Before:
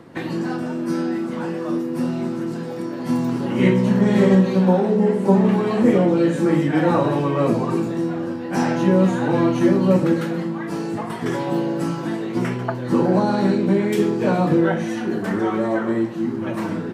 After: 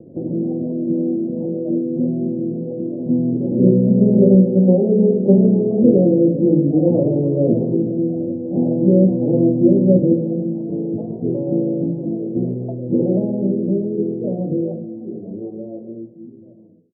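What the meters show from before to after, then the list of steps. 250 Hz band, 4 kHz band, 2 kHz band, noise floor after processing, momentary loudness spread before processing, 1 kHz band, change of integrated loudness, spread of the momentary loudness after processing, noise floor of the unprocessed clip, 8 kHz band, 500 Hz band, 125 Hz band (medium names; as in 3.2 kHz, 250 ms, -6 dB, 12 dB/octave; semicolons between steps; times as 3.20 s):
+2.5 dB, under -40 dB, under -40 dB, -41 dBFS, 9 LU, under -15 dB, +3.0 dB, 12 LU, -28 dBFS, no reading, +2.0 dB, +3.0 dB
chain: fade out at the end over 5.37 s; steep low-pass 600 Hz 48 dB/octave; trim +3.5 dB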